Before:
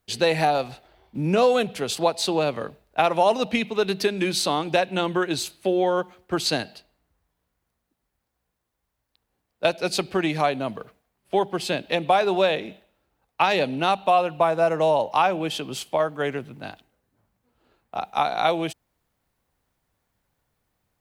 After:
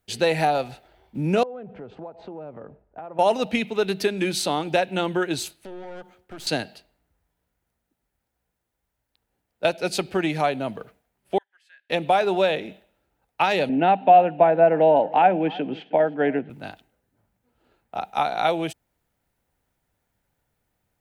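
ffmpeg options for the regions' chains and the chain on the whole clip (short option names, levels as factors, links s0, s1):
-filter_complex "[0:a]asettb=1/sr,asplit=3[s0][s1][s2];[s0]atrim=end=1.434[s3];[s1]atrim=start=1.43:end=3.19,asetpts=PTS-STARTPTS,afade=t=in:d=0.004:c=qsin,afade=t=out:st=1.756:d=0.004:c=qsin,lowpass=1200,aemphasis=mode=reproduction:type=75kf,acompressor=threshold=0.0158:ratio=4:attack=3.2:release=140:knee=1:detection=peak[s4];[s2]atrim=start=3.186[s5];[s3][s4]acrossfade=d=0.004:c1=hsin:c2=qsin[s6];[s6][s5]acrossfade=d=0.004:c1=qsin:c2=hsin,asettb=1/sr,asplit=3[s7][s8][s9];[s7]atrim=end=5.534[s10];[s8]atrim=start=5.53:end=6.47,asetpts=PTS-STARTPTS,afade=t=in:d=0.004:c=qsin,afade=t=out:st=0.936:d=0.004:c=qsin,acompressor=threshold=0.0355:ratio=6:attack=3.2:release=140:knee=1:detection=peak,aeval=exprs='(tanh(50.1*val(0)+0.7)-tanh(0.7))/50.1':c=same[s11];[s9]atrim=start=6.466[s12];[s10][s11]acrossfade=d=0.004:c1=hsin:c2=qsin[s13];[s13][s12]acrossfade=d=0.004:c1=qsin:c2=hsin,asettb=1/sr,asplit=3[s14][s15][s16];[s14]atrim=end=11.384[s17];[s15]atrim=start=11.38:end=11.9,asetpts=PTS-STARTPTS,afade=t=in:d=0.004:c=qsin,afade=t=out:st=0.516:d=0.004:c=qsin,bandpass=f=1700:t=q:w=9.9,aderivative[s18];[s16]atrim=start=11.896[s19];[s17][s18]acrossfade=d=0.004:c1=hsin:c2=qsin[s20];[s20][s19]acrossfade=d=0.004:c1=qsin:c2=hsin,asettb=1/sr,asplit=3[s21][s22][s23];[s21]atrim=end=13.694[s24];[s22]atrim=start=13.69:end=16.5,asetpts=PTS-STARTPTS,afade=t=in:d=0.004:c=qsin,afade=t=out:st=2.806:d=0.004:c=qsin,highpass=160,equalizer=f=180:t=q:w=4:g=7,equalizer=f=280:t=q:w=4:g=9,equalizer=f=460:t=q:w=4:g=4,equalizer=f=730:t=q:w=4:g=7,equalizer=f=1200:t=q:w=4:g=-9,equalizer=f=1700:t=q:w=4:g=5,lowpass=f=2800:w=0.5412,lowpass=f=2800:w=1.3066,aecho=1:1:314:0.0891,atrim=end_sample=123921[s25];[s23]atrim=start=16.496[s26];[s24][s25]acrossfade=d=0.004:c1=hsin:c2=qsin[s27];[s27][s26]acrossfade=d=0.004:c1=qsin:c2=hsin,equalizer=f=4500:w=1.5:g=-3,bandreject=f=1100:w=7.9"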